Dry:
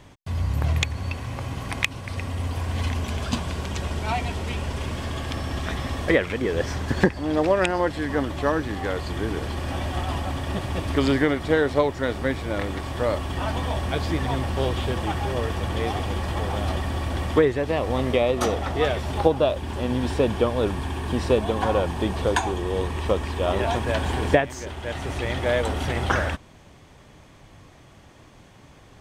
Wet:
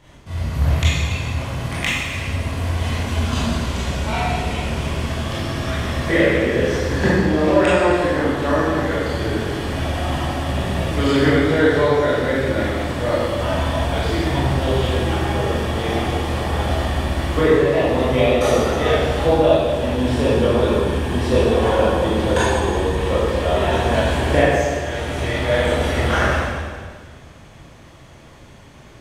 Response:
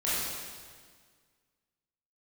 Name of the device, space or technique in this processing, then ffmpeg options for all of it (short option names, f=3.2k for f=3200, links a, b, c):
stairwell: -filter_complex "[1:a]atrim=start_sample=2205[a];[0:a][a]afir=irnorm=-1:irlink=0,volume=-3.5dB"